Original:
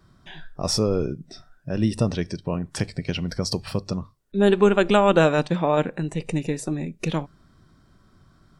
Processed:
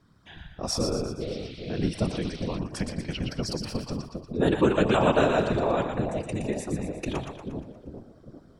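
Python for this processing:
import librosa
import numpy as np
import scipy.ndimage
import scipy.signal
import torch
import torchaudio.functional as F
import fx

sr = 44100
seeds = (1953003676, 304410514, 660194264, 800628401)

y = fx.echo_split(x, sr, split_hz=650.0, low_ms=400, high_ms=118, feedback_pct=52, wet_db=-5.5)
y = fx.dmg_noise_band(y, sr, seeds[0], low_hz=2100.0, high_hz=4500.0, level_db=-43.0, at=(1.2, 2.57), fade=0.02)
y = fx.whisperise(y, sr, seeds[1])
y = y * librosa.db_to_amplitude(-5.5)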